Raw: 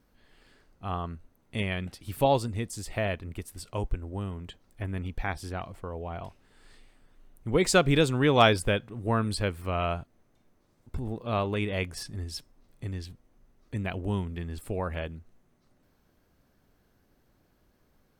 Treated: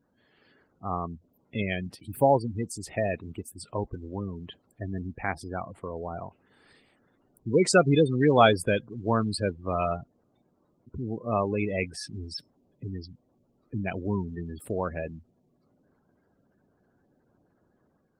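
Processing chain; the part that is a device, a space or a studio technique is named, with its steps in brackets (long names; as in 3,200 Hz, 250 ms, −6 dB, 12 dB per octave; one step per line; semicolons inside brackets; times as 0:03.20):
noise-suppressed video call (high-pass filter 120 Hz 12 dB per octave; gate on every frequency bin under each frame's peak −15 dB strong; automatic gain control gain up to 3 dB; Opus 24 kbit/s 48,000 Hz)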